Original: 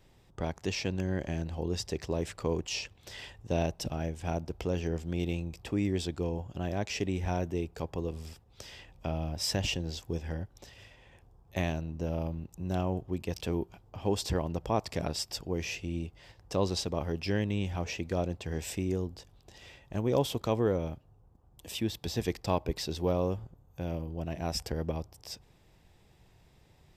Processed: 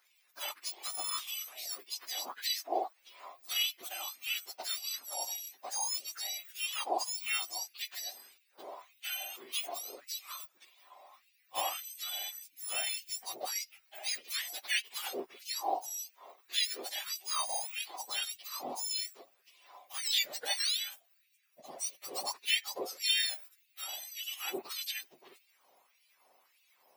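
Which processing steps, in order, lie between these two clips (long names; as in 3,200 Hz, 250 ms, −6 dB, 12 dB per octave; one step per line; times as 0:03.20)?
frequency axis turned over on the octave scale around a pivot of 1,400 Hz
auto-filter high-pass sine 1.7 Hz 670–2,800 Hz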